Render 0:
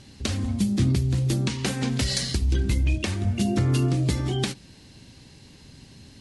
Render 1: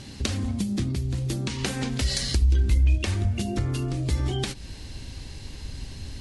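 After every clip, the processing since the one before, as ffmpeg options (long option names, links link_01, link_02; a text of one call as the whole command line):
ffmpeg -i in.wav -af "acompressor=threshold=-31dB:ratio=6,asubboost=boost=8.5:cutoff=57,volume=7dB" out.wav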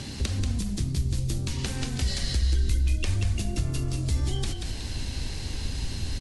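ffmpeg -i in.wav -filter_complex "[0:a]acrossover=split=92|4000[link_01][link_02][link_03];[link_01]acompressor=threshold=-31dB:ratio=4[link_04];[link_02]acompressor=threshold=-42dB:ratio=4[link_05];[link_03]acompressor=threshold=-45dB:ratio=4[link_06];[link_04][link_05][link_06]amix=inputs=3:normalize=0,asplit=6[link_07][link_08][link_09][link_10][link_11][link_12];[link_08]adelay=185,afreqshift=-44,volume=-5dB[link_13];[link_09]adelay=370,afreqshift=-88,volume=-12.7dB[link_14];[link_10]adelay=555,afreqshift=-132,volume=-20.5dB[link_15];[link_11]adelay=740,afreqshift=-176,volume=-28.2dB[link_16];[link_12]adelay=925,afreqshift=-220,volume=-36dB[link_17];[link_07][link_13][link_14][link_15][link_16][link_17]amix=inputs=6:normalize=0,volume=6dB" out.wav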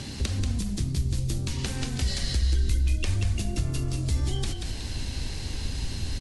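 ffmpeg -i in.wav -af anull out.wav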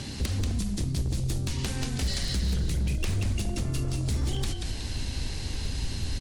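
ffmpeg -i in.wav -af "aeval=exprs='0.0841*(abs(mod(val(0)/0.0841+3,4)-2)-1)':channel_layout=same" out.wav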